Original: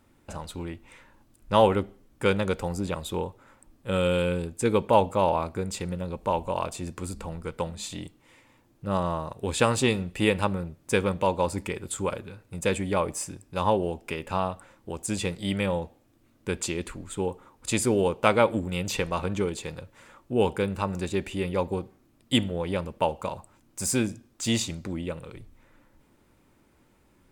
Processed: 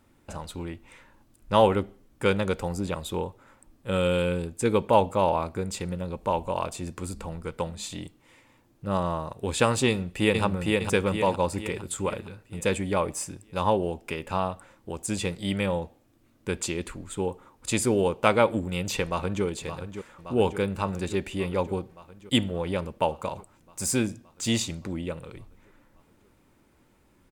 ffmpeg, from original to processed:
-filter_complex "[0:a]asplit=2[a][b];[b]afade=t=in:st=9.88:d=0.01,afade=t=out:st=10.43:d=0.01,aecho=0:1:460|920|1380|1840|2300|2760|3220:0.794328|0.397164|0.198582|0.099291|0.0496455|0.0248228|0.0124114[c];[a][c]amix=inputs=2:normalize=0,asplit=2[d][e];[e]afade=t=in:st=19.04:d=0.01,afade=t=out:st=19.44:d=0.01,aecho=0:1:570|1140|1710|2280|2850|3420|3990|4560|5130|5700|6270|6840:0.316228|0.237171|0.177878|0.133409|0.100056|0.0750423|0.0562817|0.0422113|0.0316585|0.0237439|0.0178079|0.0133559[f];[d][f]amix=inputs=2:normalize=0"

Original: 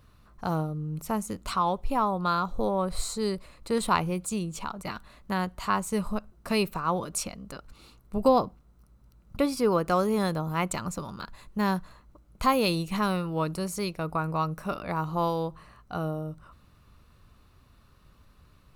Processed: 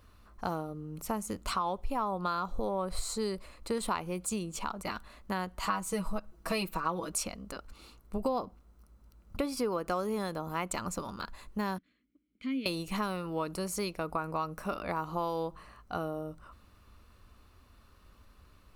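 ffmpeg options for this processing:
-filter_complex "[0:a]asettb=1/sr,asplit=3[a][b][c];[a]atrim=end=5.624[d];[b]atrim=start=5.62:end=7.12,asetpts=PTS-STARTPTS,afade=t=in:d=0.004:c=qsin,afade=t=out:st=1.496:d=0.004:c=qsin,aecho=1:1:6.2:0.96,atrim=end_sample=66150[e];[c]atrim=start=7.116[f];[d][e]acrossfade=d=0.004:c1=hsin:c2=qsin[g];[g][f]acrossfade=d=0.004:c1=qsin:c2=hsin,asettb=1/sr,asplit=3[h][i][j];[h]atrim=end=11.784[k];[i]atrim=start=11.78:end=12.66,asetpts=PTS-STARTPTS,afade=t=in:d=0.004:c=qsin,afade=t=out:st=0.876:d=0.004:c=qsin,asplit=3[l][m][n];[l]bandpass=f=270:t=q:w=8,volume=0dB[o];[m]bandpass=f=2.29k:t=q:w=8,volume=-6dB[p];[n]bandpass=f=3.01k:t=q:w=8,volume=-9dB[q];[o][p][q]amix=inputs=3:normalize=0[r];[j]atrim=start=12.656[s];[k][r]acrossfade=d=0.004:c1=hsin:c2=qsin[t];[t][s]acrossfade=d=0.004:c1=qsin:c2=hsin,acompressor=threshold=-28dB:ratio=6,equalizer=f=140:w=3.5:g=-15,bandreject=f=3.8k:w=25"

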